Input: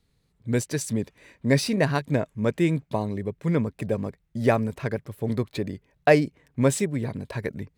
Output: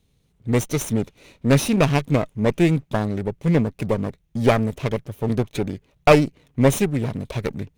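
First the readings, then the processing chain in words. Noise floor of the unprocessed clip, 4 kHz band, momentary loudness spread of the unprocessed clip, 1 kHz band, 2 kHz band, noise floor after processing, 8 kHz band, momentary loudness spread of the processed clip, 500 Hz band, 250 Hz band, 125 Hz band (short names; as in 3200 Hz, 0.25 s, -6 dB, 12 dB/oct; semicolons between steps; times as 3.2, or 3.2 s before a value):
-70 dBFS, +4.5 dB, 11 LU, +5.0 dB, +2.5 dB, -65 dBFS, +3.0 dB, 11 LU, +4.0 dB, +4.5 dB, +5.0 dB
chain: minimum comb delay 0.32 ms; gain +5 dB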